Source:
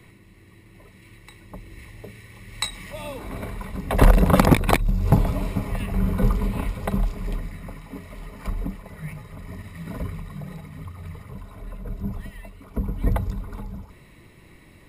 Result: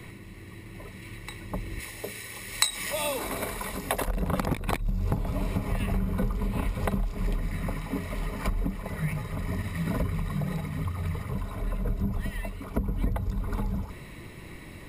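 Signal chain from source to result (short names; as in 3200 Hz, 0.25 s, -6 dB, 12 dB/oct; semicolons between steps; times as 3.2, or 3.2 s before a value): compressor 16:1, threshold -30 dBFS, peak gain reduction 22.5 dB; 1.8–4.08 tone controls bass -11 dB, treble +9 dB; gain +6.5 dB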